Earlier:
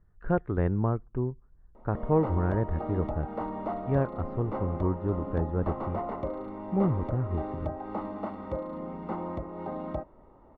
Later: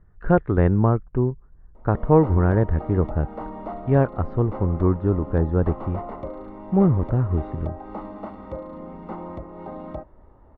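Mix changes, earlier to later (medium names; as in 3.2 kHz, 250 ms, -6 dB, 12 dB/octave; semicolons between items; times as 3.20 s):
speech +9.0 dB; reverb: off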